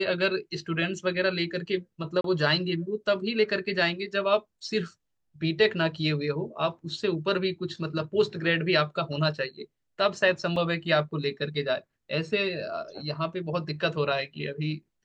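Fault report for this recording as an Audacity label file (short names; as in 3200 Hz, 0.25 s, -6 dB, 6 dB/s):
2.210000	2.240000	gap 33 ms
10.560000	10.560000	gap 3.2 ms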